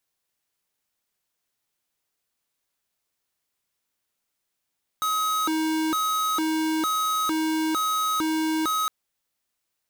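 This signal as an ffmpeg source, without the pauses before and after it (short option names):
-f lavfi -i "aevalsrc='0.0596*(2*lt(mod((793*t+477/1.1*(0.5-abs(mod(1.1*t,1)-0.5))),1),0.5)-1)':d=3.86:s=44100"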